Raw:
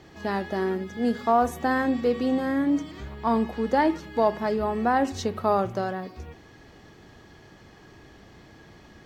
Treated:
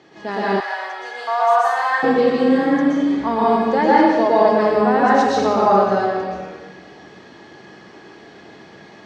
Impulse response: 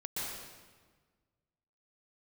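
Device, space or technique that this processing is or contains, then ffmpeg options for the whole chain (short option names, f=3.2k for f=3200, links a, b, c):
supermarket ceiling speaker: -filter_complex "[0:a]highpass=230,lowpass=5.9k[a];[1:a]atrim=start_sample=2205[b];[a][b]afir=irnorm=-1:irlink=0,asettb=1/sr,asplit=3[c][d][e];[c]atrim=end=0.604[f];[d]atrim=start=0.6:end=2.03,asetpts=PTS-STARTPTS,afade=t=in:d=0.004:c=qsin,afade=t=out:st=1.426:d=0.004:c=qsin,highpass=f=740:w=0.5412,highpass=f=740:w=1.3066[g];[e]atrim=start=2.026[h];[f][g]acrossfade=d=0.004:c1=hsin:c2=qsin[i];[i][h]acrossfade=d=0.004:c1=qsin:c2=hsin,volume=7dB"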